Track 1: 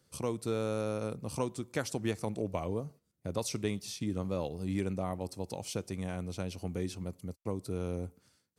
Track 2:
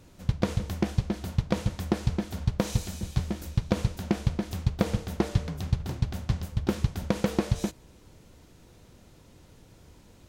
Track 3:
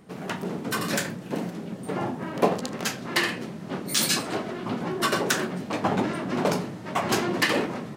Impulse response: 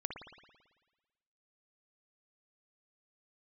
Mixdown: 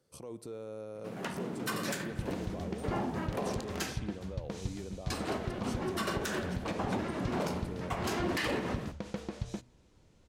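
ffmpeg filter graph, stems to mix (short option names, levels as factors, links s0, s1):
-filter_complex "[0:a]equalizer=f=510:t=o:w=1.8:g=8.5,alimiter=level_in=1.41:limit=0.0631:level=0:latency=1:release=60,volume=0.708,volume=0.376,asplit=3[s0][s1][s2];[s1]volume=0.133[s3];[1:a]lowpass=8300,bandreject=f=121.4:t=h:w=4,bandreject=f=242.8:t=h:w=4,adelay=1900,volume=0.316[s4];[2:a]adelay=950,volume=0.501,asplit=3[s5][s6][s7];[s5]atrim=end=3.93,asetpts=PTS-STARTPTS,afade=t=out:st=3.926:d=0.004:c=hsin[s8];[s6]atrim=start=3.93:end=5.1,asetpts=PTS-STARTPTS,volume=0[s9];[s7]atrim=start=5.1,asetpts=PTS-STARTPTS,afade=t=in:d=0.004:c=hsin[s10];[s8][s9][s10]concat=n=3:v=0:a=1,asplit=2[s11][s12];[s12]volume=0.422[s13];[s2]apad=whole_len=393137[s14];[s11][s14]sidechaincompress=threshold=0.00355:ratio=8:attack=29:release=166[s15];[3:a]atrim=start_sample=2205[s16];[s3][s13]amix=inputs=2:normalize=0[s17];[s17][s16]afir=irnorm=-1:irlink=0[s18];[s0][s4][s15][s18]amix=inputs=4:normalize=0,alimiter=limit=0.0708:level=0:latency=1:release=87"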